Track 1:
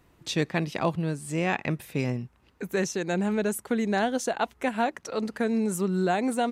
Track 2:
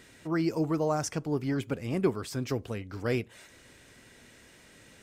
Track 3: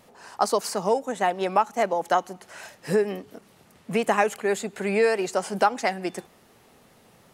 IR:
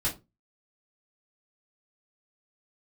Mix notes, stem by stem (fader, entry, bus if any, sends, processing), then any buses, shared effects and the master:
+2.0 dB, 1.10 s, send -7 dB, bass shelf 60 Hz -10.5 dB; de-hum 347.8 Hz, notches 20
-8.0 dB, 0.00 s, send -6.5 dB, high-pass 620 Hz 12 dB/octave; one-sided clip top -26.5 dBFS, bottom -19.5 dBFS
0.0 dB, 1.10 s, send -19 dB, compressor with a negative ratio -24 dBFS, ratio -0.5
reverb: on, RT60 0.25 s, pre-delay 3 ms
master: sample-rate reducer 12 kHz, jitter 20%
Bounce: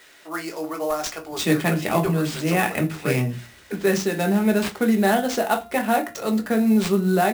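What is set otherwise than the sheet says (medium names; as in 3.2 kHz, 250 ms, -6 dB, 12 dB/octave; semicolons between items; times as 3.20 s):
stem 2 -8.0 dB -> +3.0 dB; stem 3: muted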